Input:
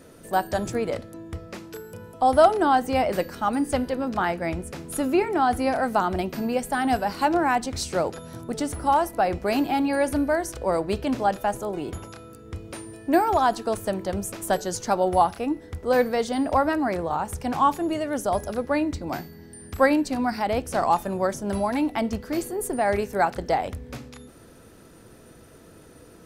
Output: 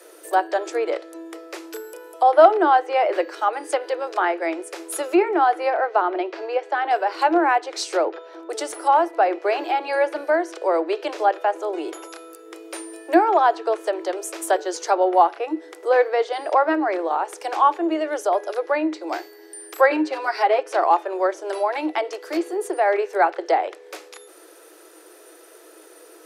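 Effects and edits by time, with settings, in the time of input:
5.7–6.91 air absorption 180 m
8.05–8.5 air absorption 230 m
19.9–20.73 comb 7.4 ms, depth 89%
whole clip: Chebyshev high-pass 310 Hz, order 10; treble ducked by the level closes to 2700 Hz, closed at -22 dBFS; high shelf 11000 Hz +10.5 dB; gain +4.5 dB

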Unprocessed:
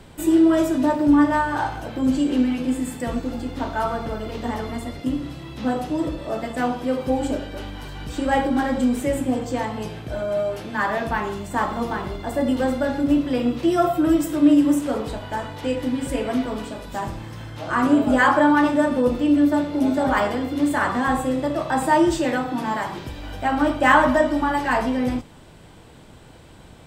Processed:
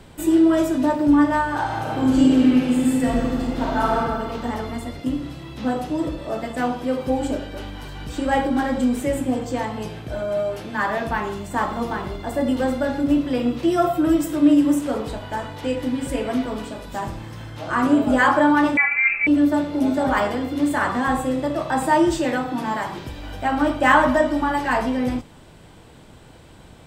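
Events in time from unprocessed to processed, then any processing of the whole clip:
1.63–3.98 reverb throw, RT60 1.7 s, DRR -3 dB
18.77–19.27 inverted band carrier 2600 Hz

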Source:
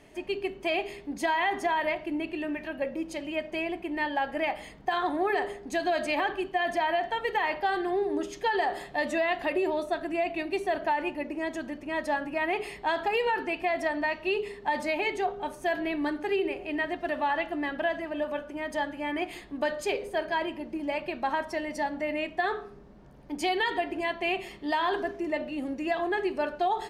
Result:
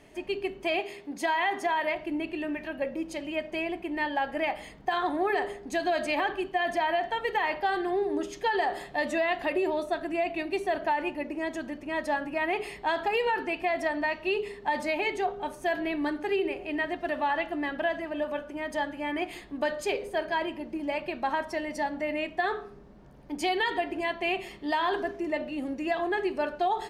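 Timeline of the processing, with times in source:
0.8–1.95 HPF 230 Hz 6 dB/oct

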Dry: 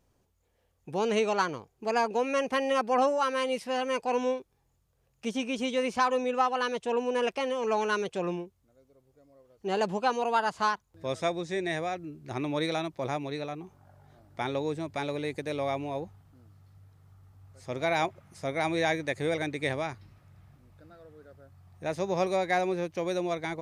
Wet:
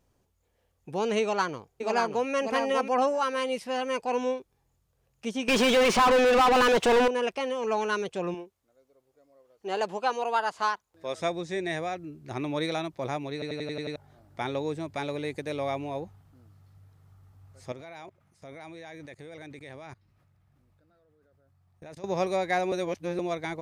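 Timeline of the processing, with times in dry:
1.21–2.29 echo throw 0.59 s, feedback 10%, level -5.5 dB
5.48–7.08 overdrive pedal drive 35 dB, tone 2500 Hz, clips at -14 dBFS
8.34–11.18 tone controls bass -13 dB, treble -1 dB
13.33 stutter in place 0.09 s, 7 plays
17.72–22.04 level quantiser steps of 22 dB
22.72–23.19 reverse

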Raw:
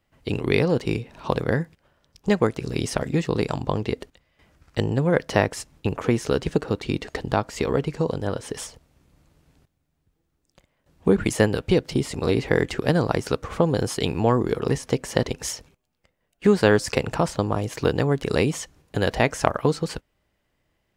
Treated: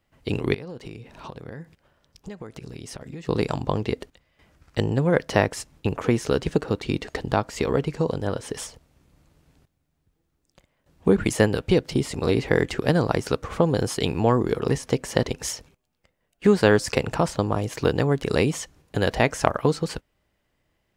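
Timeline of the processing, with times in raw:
0.54–3.29 compressor 8:1, threshold -34 dBFS

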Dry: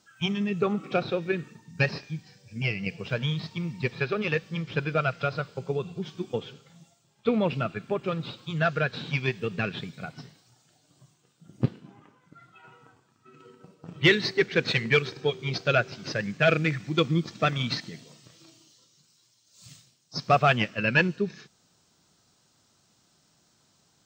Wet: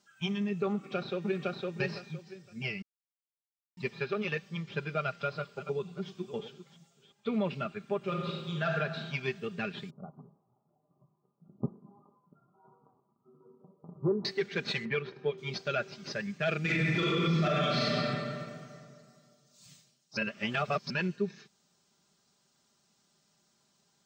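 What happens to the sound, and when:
0.73–1.61 echo throw 0.51 s, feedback 20%, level -1.5 dB
2.82–3.77 mute
4.98–7.31 reverse delay 0.357 s, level -12.5 dB
7.97–8.66 reverb throw, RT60 1.4 s, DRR -1 dB
9.9–14.25 steep low-pass 1200 Hz 72 dB/oct
14.85–15.38 LPF 2400 Hz
16.61–17.87 reverb throw, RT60 2.2 s, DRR -11.5 dB
20.17–20.9 reverse
whole clip: low shelf 78 Hz -8 dB; comb 5 ms, depth 57%; limiter -13.5 dBFS; gain -7 dB

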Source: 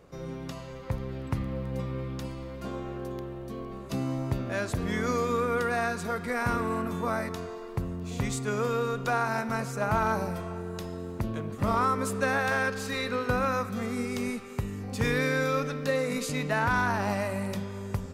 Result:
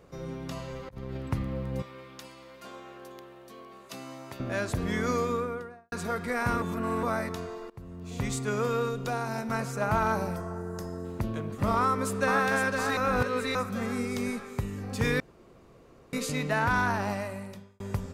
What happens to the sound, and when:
0.51–1.17 negative-ratio compressor -37 dBFS, ratio -0.5
1.82–4.4 HPF 1200 Hz 6 dB/oct
5.13–5.92 studio fade out
6.62–7.03 reverse
7.7–8.33 fade in, from -23 dB
8.88–9.5 dynamic EQ 1400 Hz, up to -8 dB, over -41 dBFS, Q 0.72
10.36–11.05 band shelf 3000 Hz -12.5 dB 1.1 oct
11.76–12.45 echo throw 0.51 s, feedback 50%, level -4.5 dB
12.97–13.55 reverse
14.07–14.62 notch 2800 Hz
15.2–16.13 room tone
16.88–17.8 fade out

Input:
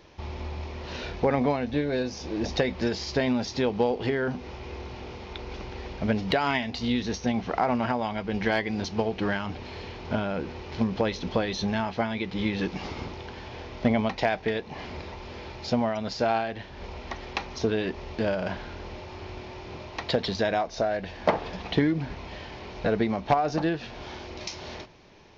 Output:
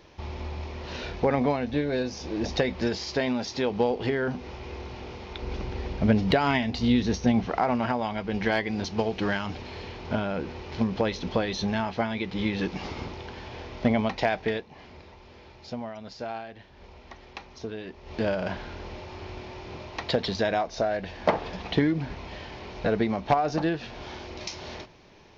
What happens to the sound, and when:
2.97–3.71 low shelf 170 Hz -7.5 dB
5.42–7.46 low shelf 390 Hz +6.5 dB
8.98–9.62 high shelf 4500 Hz +7.5 dB
14.54–18.16 dip -10 dB, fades 0.13 s

